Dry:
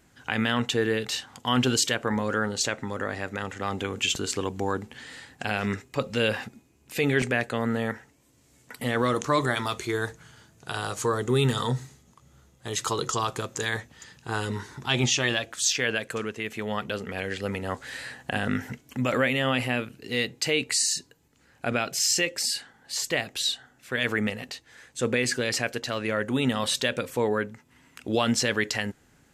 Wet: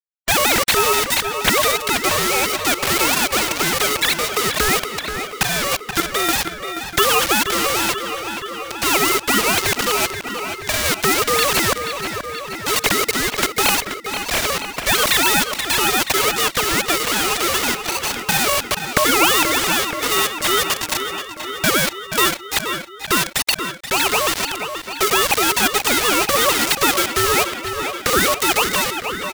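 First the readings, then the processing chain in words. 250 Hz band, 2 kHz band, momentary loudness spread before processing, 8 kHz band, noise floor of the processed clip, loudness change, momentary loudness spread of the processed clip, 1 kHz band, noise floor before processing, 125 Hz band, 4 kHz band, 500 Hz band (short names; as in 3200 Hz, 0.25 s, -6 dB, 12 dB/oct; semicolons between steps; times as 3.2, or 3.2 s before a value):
+3.5 dB, +10.0 dB, 11 LU, +11.0 dB, -34 dBFS, +10.0 dB, 9 LU, +13.0 dB, -61 dBFS, -1.0 dB, +11.0 dB, +6.5 dB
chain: sine-wave speech; low-pass opened by the level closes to 1400 Hz, open at -23.5 dBFS; dynamic EQ 1000 Hz, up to -5 dB, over -43 dBFS, Q 2.1; in parallel at +2.5 dB: compressor 6:1, threshold -33 dBFS, peak gain reduction 17 dB; on the sum: ring modulator 850 Hz; sample gate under -32.5 dBFS; random-step tremolo; on a send: feedback echo 0.479 s, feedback 53%, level -15 dB; on the sum: spectral compressor 2:1; gain +7 dB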